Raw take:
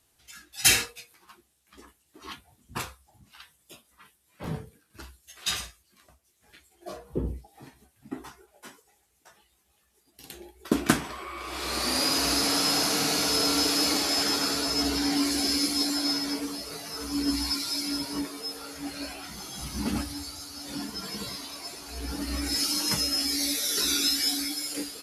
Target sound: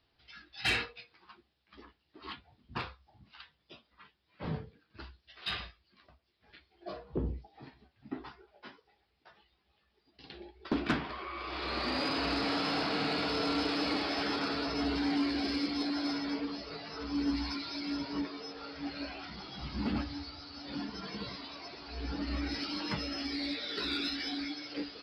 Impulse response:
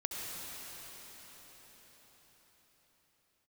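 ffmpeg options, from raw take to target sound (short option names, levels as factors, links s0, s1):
-filter_complex "[0:a]aresample=11025,aresample=44100,acrossover=split=4100[s0][s1];[s1]acompressor=threshold=0.00282:ratio=5[s2];[s0][s2]amix=inputs=2:normalize=0,asoftclip=type=tanh:threshold=0.1,volume=0.75"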